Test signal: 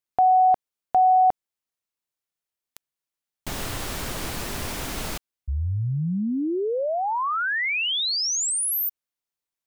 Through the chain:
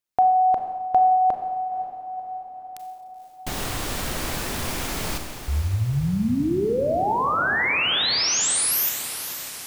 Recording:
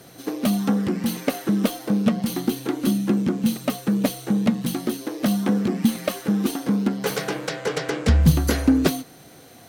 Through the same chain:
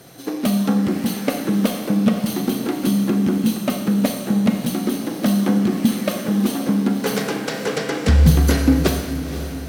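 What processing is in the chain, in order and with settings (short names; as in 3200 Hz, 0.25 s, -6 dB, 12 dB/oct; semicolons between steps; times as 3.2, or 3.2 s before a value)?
diffused feedback echo 0.513 s, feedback 58%, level -11 dB; Schroeder reverb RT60 1.1 s, combs from 29 ms, DRR 6 dB; gain +1.5 dB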